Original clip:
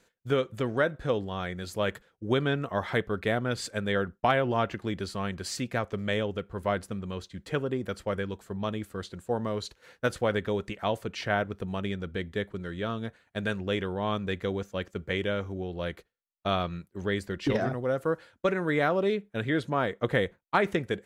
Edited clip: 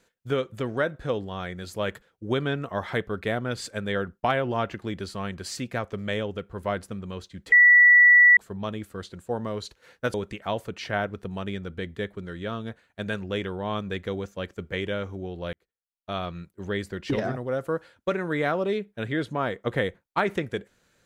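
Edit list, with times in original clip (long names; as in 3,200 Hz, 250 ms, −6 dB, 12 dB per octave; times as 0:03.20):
0:07.52–0:08.37: beep over 1,950 Hz −11 dBFS
0:10.14–0:10.51: remove
0:15.90–0:16.85: fade in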